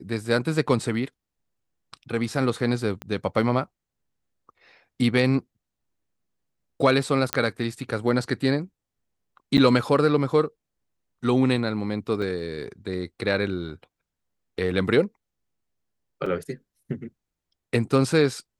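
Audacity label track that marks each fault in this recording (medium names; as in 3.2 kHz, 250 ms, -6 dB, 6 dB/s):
3.020000	3.020000	pop -19 dBFS
7.330000	7.330000	pop -4 dBFS
9.570000	9.580000	dropout 8.9 ms
12.220000	12.220000	dropout 4.2 ms
16.260000	16.260000	dropout 4.1 ms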